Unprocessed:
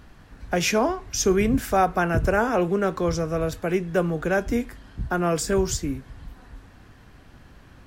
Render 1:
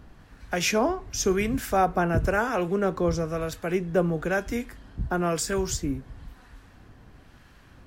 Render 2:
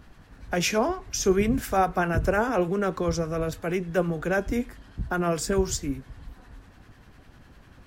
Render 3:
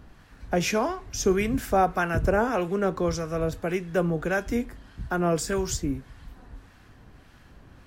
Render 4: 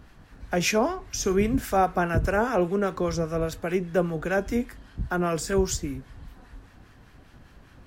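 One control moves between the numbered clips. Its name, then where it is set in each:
two-band tremolo in antiphase, speed: 1, 10, 1.7, 5 Hertz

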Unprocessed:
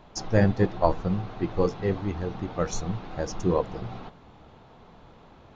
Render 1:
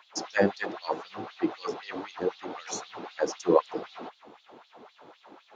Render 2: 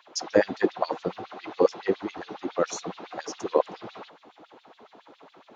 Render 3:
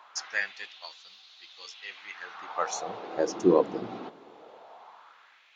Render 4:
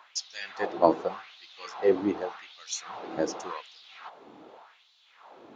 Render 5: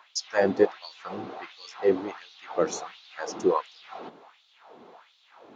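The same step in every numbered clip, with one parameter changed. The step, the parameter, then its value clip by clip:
auto-filter high-pass, speed: 3.9, 7.2, 0.2, 0.86, 1.4 Hertz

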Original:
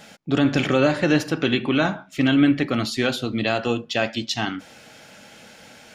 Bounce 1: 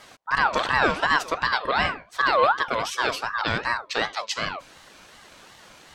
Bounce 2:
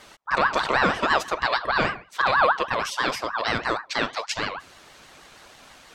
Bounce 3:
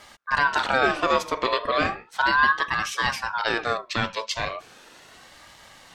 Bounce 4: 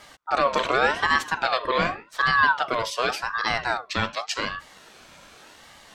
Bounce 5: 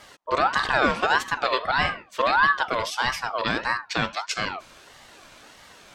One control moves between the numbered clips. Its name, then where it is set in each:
ring modulator whose carrier an LFO sweeps, at: 2.7, 6.3, 0.36, 0.87, 1.6 Hertz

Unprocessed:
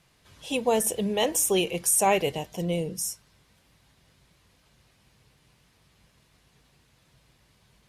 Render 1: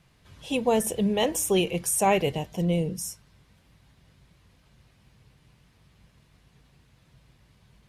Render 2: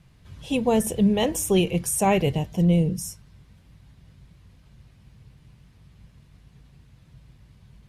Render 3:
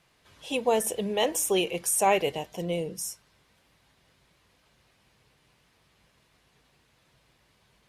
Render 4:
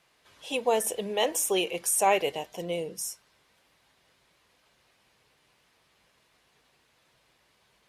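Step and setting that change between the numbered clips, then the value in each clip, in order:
bass and treble, bass: +6, +15, −6, −15 decibels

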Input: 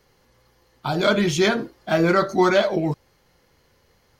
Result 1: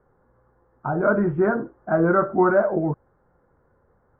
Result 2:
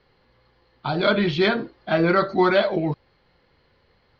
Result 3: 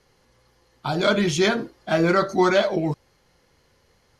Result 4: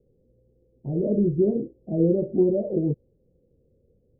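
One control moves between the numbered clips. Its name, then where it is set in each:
elliptic low-pass filter, frequency: 1,500, 4,400, 12,000, 510 Hertz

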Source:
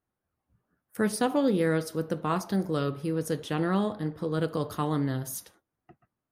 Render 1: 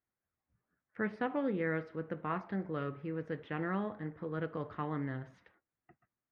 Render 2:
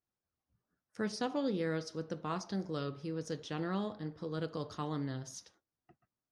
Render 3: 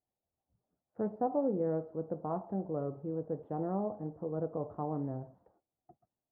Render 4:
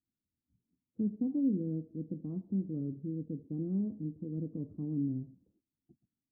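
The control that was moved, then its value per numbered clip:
transistor ladder low-pass, frequency: 2,400, 6,500, 860, 310 Hertz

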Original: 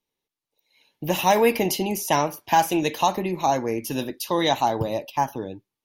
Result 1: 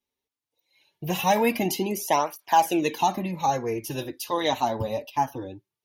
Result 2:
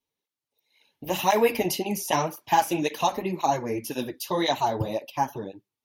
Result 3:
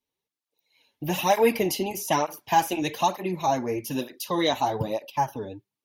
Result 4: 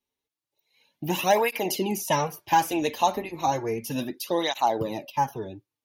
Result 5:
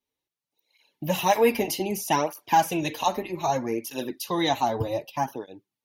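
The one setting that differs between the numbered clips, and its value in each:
through-zero flanger with one copy inverted, nulls at: 0.21, 1.9, 1.1, 0.33, 0.64 Hertz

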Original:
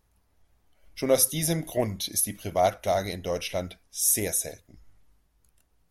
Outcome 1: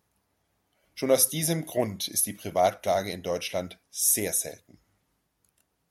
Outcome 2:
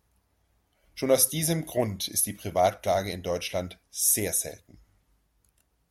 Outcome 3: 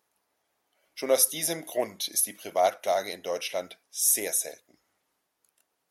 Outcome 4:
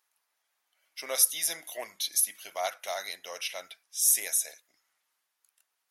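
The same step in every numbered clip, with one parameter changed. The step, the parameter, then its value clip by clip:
high-pass filter, corner frequency: 120, 45, 400, 1,200 Hertz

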